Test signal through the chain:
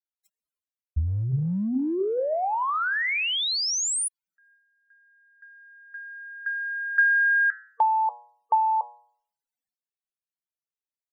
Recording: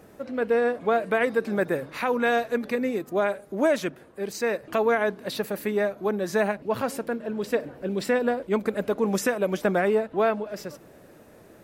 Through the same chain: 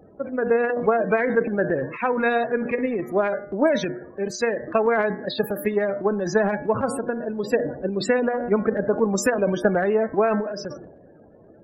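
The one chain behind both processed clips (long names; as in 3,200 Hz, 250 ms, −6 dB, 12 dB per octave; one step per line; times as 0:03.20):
spectral peaks only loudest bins 32
hum removal 120.2 Hz, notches 19
transient designer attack +6 dB, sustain +10 dB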